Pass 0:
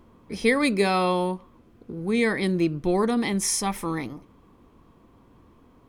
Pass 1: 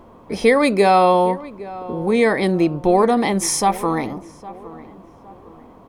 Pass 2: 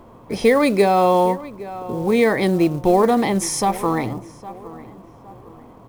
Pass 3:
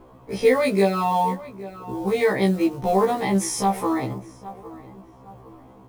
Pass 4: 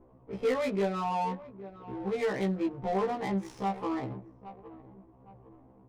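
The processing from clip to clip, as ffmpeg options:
ffmpeg -i in.wav -filter_complex "[0:a]equalizer=frequency=700:width_type=o:width=1.4:gain=11.5,asplit=2[link_01][link_02];[link_02]acompressor=threshold=-24dB:ratio=6,volume=-1.5dB[link_03];[link_01][link_03]amix=inputs=2:normalize=0,asplit=2[link_04][link_05];[link_05]adelay=811,lowpass=frequency=1600:poles=1,volume=-17.5dB,asplit=2[link_06][link_07];[link_07]adelay=811,lowpass=frequency=1600:poles=1,volume=0.42,asplit=2[link_08][link_09];[link_09]adelay=811,lowpass=frequency=1600:poles=1,volume=0.42[link_10];[link_04][link_06][link_08][link_10]amix=inputs=4:normalize=0" out.wav
ffmpeg -i in.wav -filter_complex "[0:a]acrossover=split=660[link_01][link_02];[link_01]equalizer=frequency=120:width=6.7:gain=12[link_03];[link_02]alimiter=limit=-14.5dB:level=0:latency=1[link_04];[link_03][link_04]amix=inputs=2:normalize=0,acrusher=bits=7:mode=log:mix=0:aa=0.000001" out.wav
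ffmpeg -i in.wav -af "afftfilt=real='re*1.73*eq(mod(b,3),0)':imag='im*1.73*eq(mod(b,3),0)':win_size=2048:overlap=0.75,volume=-1.5dB" out.wav
ffmpeg -i in.wav -af "asoftclip=type=tanh:threshold=-12dB,adynamicsmooth=sensitivity=3.5:basefreq=730,volume=-8.5dB" out.wav

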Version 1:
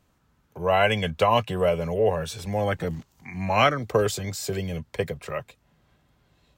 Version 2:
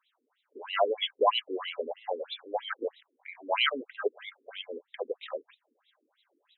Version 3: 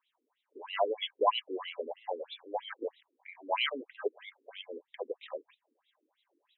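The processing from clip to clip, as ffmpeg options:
ffmpeg -i in.wav -filter_complex "[0:a]acrossover=split=3100[link_01][link_02];[link_02]acompressor=threshold=-48dB:ratio=4:attack=1:release=60[link_03];[link_01][link_03]amix=inputs=2:normalize=0,aexciter=amount=8.5:drive=4:freq=3500,afftfilt=real='re*between(b*sr/1024,330*pow(2900/330,0.5+0.5*sin(2*PI*3.1*pts/sr))/1.41,330*pow(2900/330,0.5+0.5*sin(2*PI*3.1*pts/sr))*1.41)':imag='im*between(b*sr/1024,330*pow(2900/330,0.5+0.5*sin(2*PI*3.1*pts/sr))/1.41,330*pow(2900/330,0.5+0.5*sin(2*PI*3.1*pts/sr))*1.41)':win_size=1024:overlap=0.75" out.wav
ffmpeg -i in.wav -af "highpass=210,equalizer=frequency=320:width_type=q:width=4:gain=4,equalizer=frequency=940:width_type=q:width=4:gain=5,equalizer=frequency=1400:width_type=q:width=4:gain=-9,lowpass=frequency=3700:width=0.5412,lowpass=frequency=3700:width=1.3066,volume=-4dB" out.wav

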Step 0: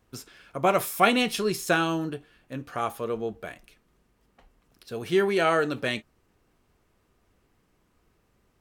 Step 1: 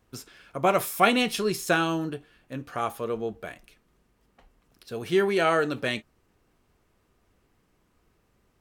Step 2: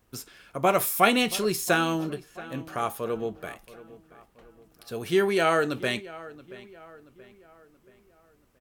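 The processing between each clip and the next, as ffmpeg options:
ffmpeg -i in.wav -af anull out.wav
ffmpeg -i in.wav -filter_complex "[0:a]highshelf=frequency=9300:gain=8.5,asplit=2[link_01][link_02];[link_02]adelay=678,lowpass=frequency=3000:poles=1,volume=-18dB,asplit=2[link_03][link_04];[link_04]adelay=678,lowpass=frequency=3000:poles=1,volume=0.47,asplit=2[link_05][link_06];[link_06]adelay=678,lowpass=frequency=3000:poles=1,volume=0.47,asplit=2[link_07][link_08];[link_08]adelay=678,lowpass=frequency=3000:poles=1,volume=0.47[link_09];[link_01][link_03][link_05][link_07][link_09]amix=inputs=5:normalize=0" out.wav

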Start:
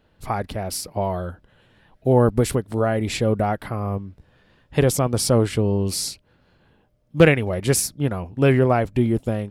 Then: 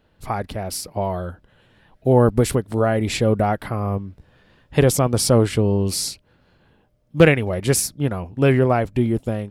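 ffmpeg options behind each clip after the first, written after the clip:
ffmpeg -i in.wav -af "dynaudnorm=framelen=780:gausssize=5:maxgain=4.5dB" out.wav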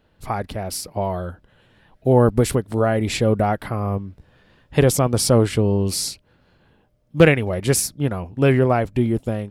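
ffmpeg -i in.wav -af anull out.wav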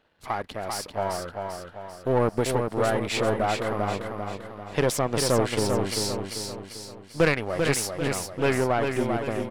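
ffmpeg -i in.wav -filter_complex "[0:a]aeval=exprs='if(lt(val(0),0),0.447*val(0),val(0))':channel_layout=same,asplit=2[link_01][link_02];[link_02]highpass=frequency=720:poles=1,volume=16dB,asoftclip=type=tanh:threshold=-1.5dB[link_03];[link_01][link_03]amix=inputs=2:normalize=0,lowpass=frequency=4300:poles=1,volume=-6dB,aecho=1:1:393|786|1179|1572|1965|2358:0.562|0.264|0.124|0.0584|0.0274|0.0129,volume=-8.5dB" out.wav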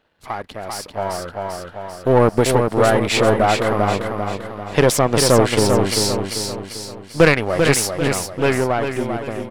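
ffmpeg -i in.wav -af "dynaudnorm=framelen=220:gausssize=13:maxgain=8dB,volume=2dB" out.wav

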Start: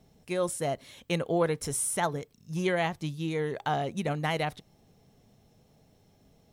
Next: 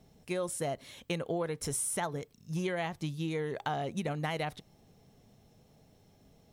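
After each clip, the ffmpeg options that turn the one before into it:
ffmpeg -i in.wav -af "acompressor=threshold=-30dB:ratio=6" out.wav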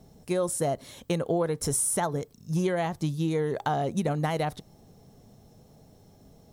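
ffmpeg -i in.wav -af "equalizer=frequency=2500:width_type=o:width=1.3:gain=-8.5,volume=7.5dB" out.wav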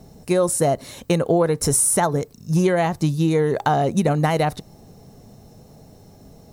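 ffmpeg -i in.wav -af "bandreject=frequency=3300:width=10,volume=8.5dB" out.wav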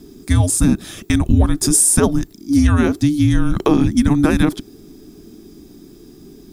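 ffmpeg -i in.wav -af "afreqshift=-440,volume=5dB" out.wav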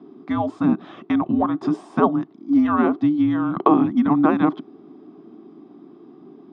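ffmpeg -i in.wav -af "highpass=frequency=180:width=0.5412,highpass=frequency=180:width=1.3066,equalizer=frequency=200:width_type=q:width=4:gain=-5,equalizer=frequency=470:width_type=q:width=4:gain=-4,equalizer=frequency=740:width_type=q:width=4:gain=7,equalizer=frequency=1100:width_type=q:width=4:gain=9,equalizer=frequency=1700:width_type=q:width=4:gain=-8,equalizer=frequency=2400:width_type=q:width=4:gain=-8,lowpass=frequency=2500:width=0.5412,lowpass=frequency=2500:width=1.3066,volume=-1dB" out.wav

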